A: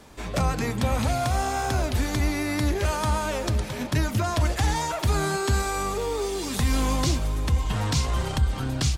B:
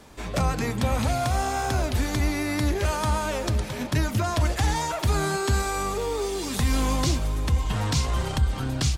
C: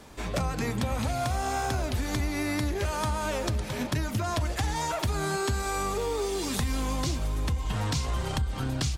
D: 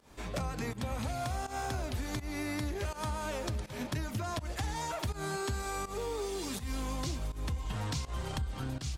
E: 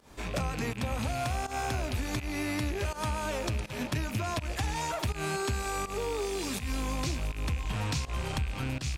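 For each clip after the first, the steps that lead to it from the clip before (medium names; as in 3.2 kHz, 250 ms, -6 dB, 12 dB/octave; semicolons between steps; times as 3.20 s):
no audible change
compression, threshold -25 dBFS, peak gain reduction 8 dB
volume shaper 82 bpm, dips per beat 1, -17 dB, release 146 ms; trim -6.5 dB
rattle on loud lows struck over -45 dBFS, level -34 dBFS; trim +3.5 dB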